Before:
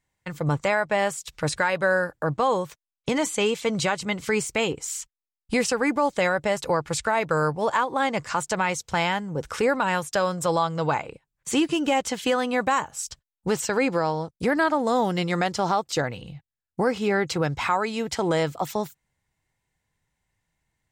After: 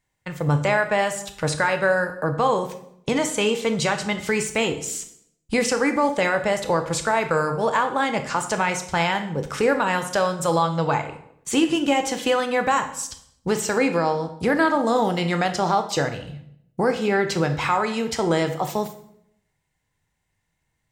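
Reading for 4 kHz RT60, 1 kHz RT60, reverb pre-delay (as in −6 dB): 0.55 s, 0.65 s, 16 ms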